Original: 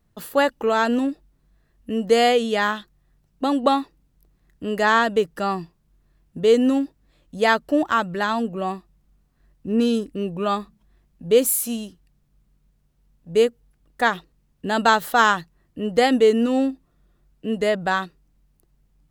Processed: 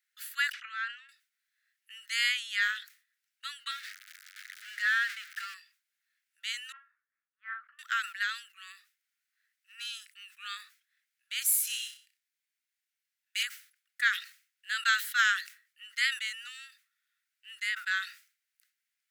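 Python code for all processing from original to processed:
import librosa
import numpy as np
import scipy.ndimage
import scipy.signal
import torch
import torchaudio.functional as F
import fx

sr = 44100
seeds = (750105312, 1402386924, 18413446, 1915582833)

y = fx.chain(x, sr, fx.spacing_loss(db_at_10k=30),
    fx.dispersion(late='lows', ms=41.0, hz=680.0),
    fx.pre_swell(db_per_s=93.0), at=(0.53, 1.09))
y = fx.chain(y, sr, fx.zero_step(step_db=-23.5),
    fx.cheby_ripple_highpass(hz=1200.0, ripple_db=3),
    fx.high_shelf(hz=3300.0, db=-10.5), at=(3.71, 5.54))
y = fx.chain(y, sr, fx.lowpass(hz=1100.0, slope=24),
    fx.doubler(ms=38.0, db=-4.0), at=(6.72, 7.79))
y = fx.chain(y, sr, fx.highpass(hz=1400.0, slope=12),
    fx.room_flutter(wall_m=5.4, rt60_s=0.38),
    fx.leveller(passes=2), at=(11.67, 13.43))
y = scipy.signal.sosfilt(scipy.signal.butter(12, 1400.0, 'highpass', fs=sr, output='sos'), y)
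y = fx.peak_eq(y, sr, hz=2100.0, db=5.0, octaves=0.34)
y = fx.sustainer(y, sr, db_per_s=140.0)
y = y * librosa.db_to_amplitude(-4.5)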